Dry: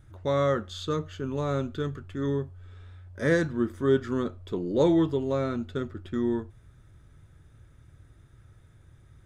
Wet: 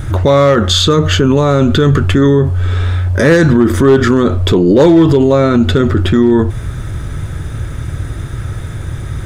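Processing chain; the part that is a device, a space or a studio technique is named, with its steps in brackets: loud club master (compressor 1.5:1, threshold -33 dBFS, peak gain reduction 6 dB; hard clip -22.5 dBFS, distortion -22 dB; maximiser +34 dB); gain -1 dB

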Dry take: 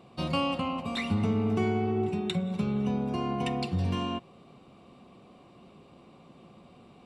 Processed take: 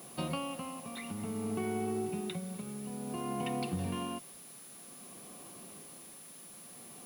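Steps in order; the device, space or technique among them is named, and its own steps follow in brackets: medium wave at night (BPF 140–3600 Hz; compressor, threshold -32 dBFS, peak gain reduction 8.5 dB; tremolo 0.55 Hz, depth 62%; whine 10000 Hz -52 dBFS; white noise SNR 17 dB); gain +1 dB

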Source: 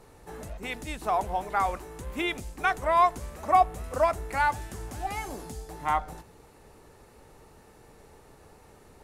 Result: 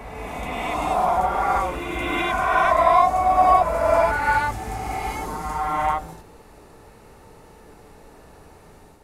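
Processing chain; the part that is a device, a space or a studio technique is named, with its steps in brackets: reverse reverb (reverse; reverb RT60 2.6 s, pre-delay 38 ms, DRR -6 dB; reverse)

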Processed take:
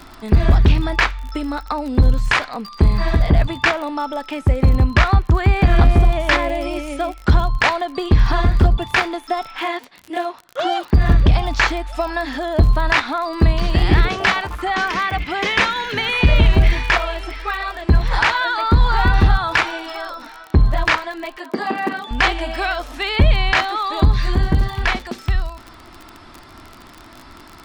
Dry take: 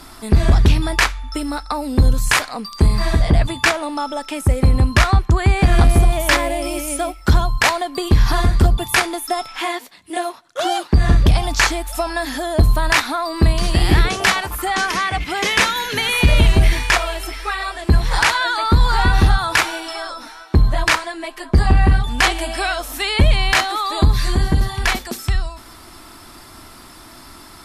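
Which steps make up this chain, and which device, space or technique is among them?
lo-fi chain (LPF 3600 Hz 12 dB/oct; wow and flutter 16 cents; crackle 45/s -26 dBFS); 21.37–22.11 steep high-pass 230 Hz 36 dB/oct

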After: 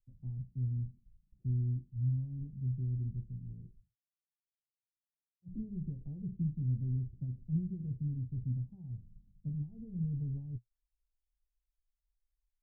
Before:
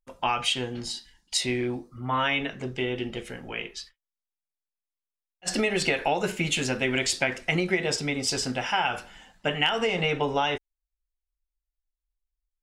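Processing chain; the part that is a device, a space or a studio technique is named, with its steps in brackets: 3.81–5.48 HPF 120 Hz; the neighbour's flat through the wall (LPF 160 Hz 24 dB/oct; bell 120 Hz +7 dB 0.42 oct)

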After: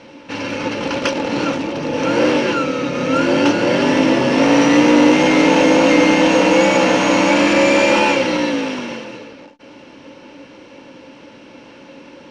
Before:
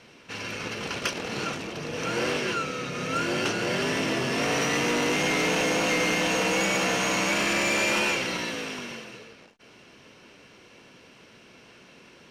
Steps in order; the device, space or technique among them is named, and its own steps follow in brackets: inside a cardboard box (LPF 5800 Hz 12 dB/oct; small resonant body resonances 290/540/870 Hz, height 15 dB, ringing for 65 ms); gain +7 dB

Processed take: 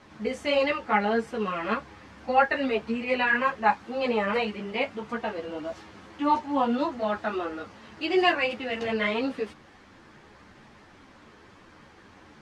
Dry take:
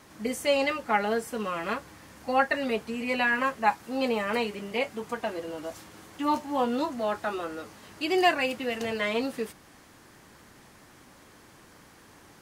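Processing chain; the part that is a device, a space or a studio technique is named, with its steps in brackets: string-machine ensemble chorus (ensemble effect; LPF 4000 Hz 12 dB/oct); gain +5 dB

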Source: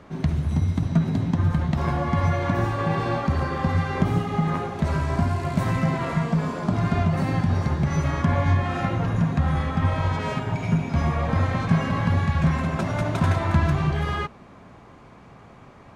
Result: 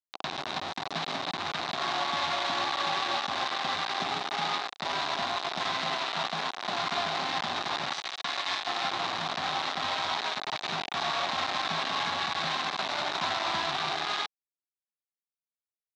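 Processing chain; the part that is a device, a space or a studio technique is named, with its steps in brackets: 7.93–8.67 tilt shelf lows -9.5 dB, about 1400 Hz; hand-held game console (bit-crush 4-bit; speaker cabinet 460–5500 Hz, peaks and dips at 490 Hz -10 dB, 760 Hz +6 dB, 1100 Hz +3 dB, 3800 Hz +10 dB); gain -6 dB

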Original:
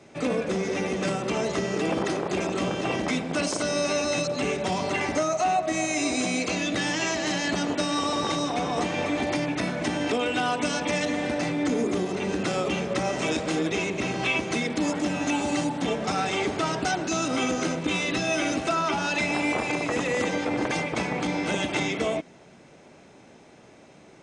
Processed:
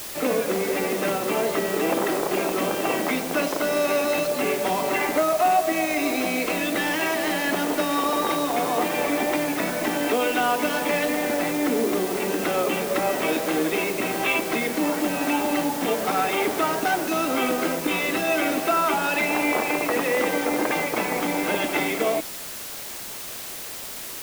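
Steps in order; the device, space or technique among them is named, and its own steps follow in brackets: wax cylinder (BPF 280–2700 Hz; wow and flutter 21 cents; white noise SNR 11 dB); gain +4.5 dB

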